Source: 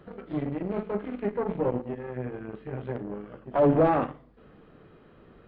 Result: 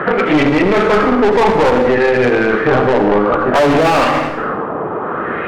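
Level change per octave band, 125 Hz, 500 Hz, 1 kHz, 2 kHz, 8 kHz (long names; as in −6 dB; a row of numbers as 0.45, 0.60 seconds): +11.5 dB, +16.5 dB, +18.5 dB, +27.0 dB, can't be measured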